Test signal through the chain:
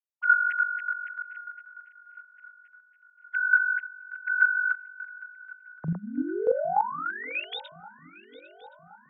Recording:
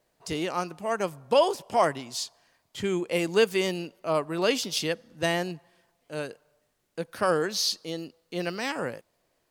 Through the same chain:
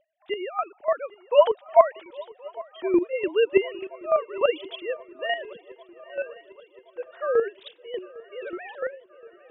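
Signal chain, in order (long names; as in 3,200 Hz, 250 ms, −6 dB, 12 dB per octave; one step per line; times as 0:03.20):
three sine waves on the formant tracks
square-wave tremolo 3.4 Hz, depth 65%, duty 15%
feedback echo with a long and a short gap by turns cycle 1,072 ms, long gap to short 3 to 1, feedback 56%, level −21.5 dB
level +8.5 dB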